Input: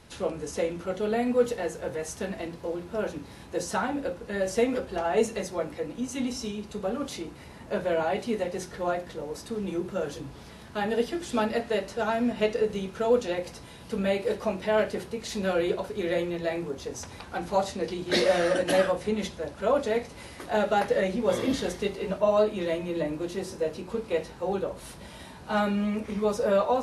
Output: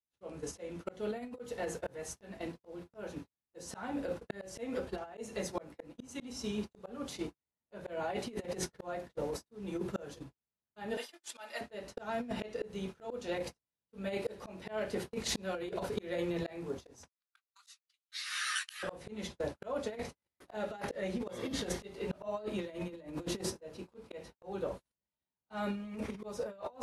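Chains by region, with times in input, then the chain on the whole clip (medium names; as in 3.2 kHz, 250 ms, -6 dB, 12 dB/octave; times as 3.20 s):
10.97–11.61 s: high-pass 860 Hz + treble shelf 6.8 kHz +4 dB + comb 3.3 ms, depth 42%
17.08–18.83 s: elliptic high-pass 1.2 kHz, stop band 50 dB + treble shelf 3 kHz +10.5 dB + three-phase chorus
whole clip: gate -36 dBFS, range -57 dB; slow attack 676 ms; compressor with a negative ratio -37 dBFS, ratio -0.5; trim +1 dB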